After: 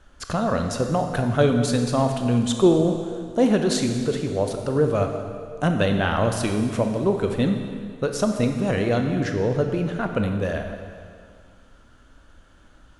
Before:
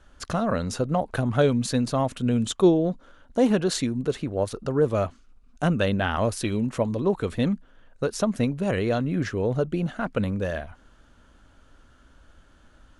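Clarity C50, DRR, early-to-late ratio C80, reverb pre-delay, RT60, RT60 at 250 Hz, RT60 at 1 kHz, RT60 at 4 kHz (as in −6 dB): 5.5 dB, 4.5 dB, 7.0 dB, 19 ms, 2.1 s, 2.1 s, 2.1 s, 1.9 s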